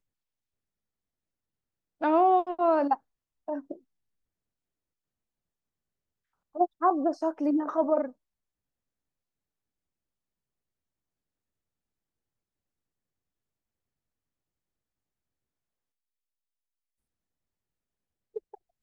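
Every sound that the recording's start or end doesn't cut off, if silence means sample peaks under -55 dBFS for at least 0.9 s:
2.01–3.79 s
6.55–8.12 s

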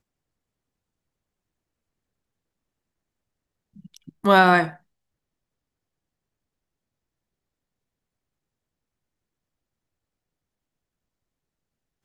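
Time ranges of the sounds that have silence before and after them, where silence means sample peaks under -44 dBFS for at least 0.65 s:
3.76–4.77 s

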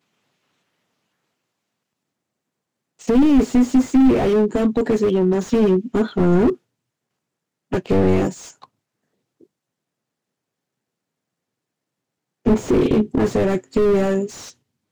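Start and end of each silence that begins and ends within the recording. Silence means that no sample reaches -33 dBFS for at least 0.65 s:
6.55–7.72 s
8.64–12.46 s

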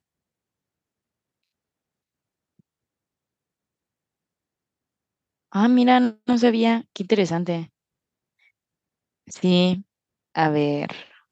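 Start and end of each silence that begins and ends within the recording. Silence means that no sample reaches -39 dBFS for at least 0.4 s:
7.65–9.28 s
9.82–10.35 s

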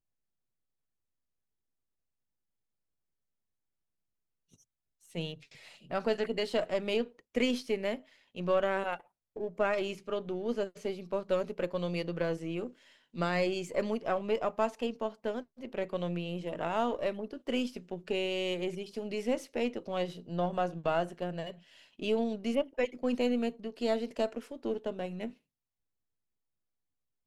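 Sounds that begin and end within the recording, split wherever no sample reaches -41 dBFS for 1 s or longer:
5.15–25.30 s

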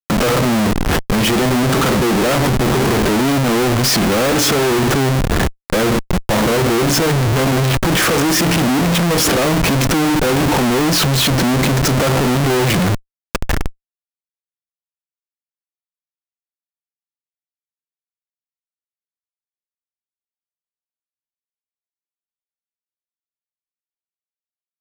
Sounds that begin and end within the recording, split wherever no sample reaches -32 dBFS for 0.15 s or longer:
5.70–12.98 s
13.35–13.70 s

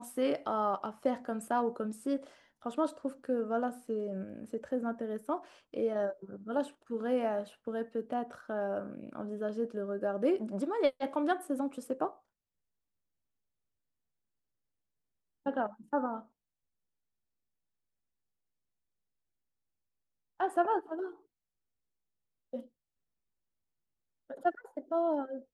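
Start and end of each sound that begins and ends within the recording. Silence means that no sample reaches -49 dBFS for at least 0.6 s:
15.46–16.22 s
20.40–21.15 s
22.53–22.65 s

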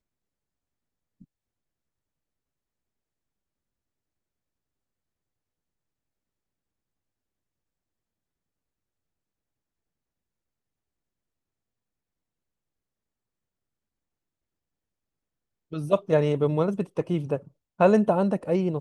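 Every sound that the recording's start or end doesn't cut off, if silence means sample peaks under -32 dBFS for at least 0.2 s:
15.73–17.37 s

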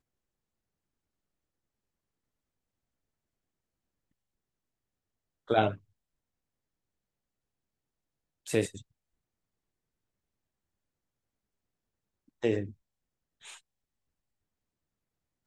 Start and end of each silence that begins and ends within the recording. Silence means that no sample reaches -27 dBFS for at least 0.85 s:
5.69–8.50 s
8.65–12.44 s

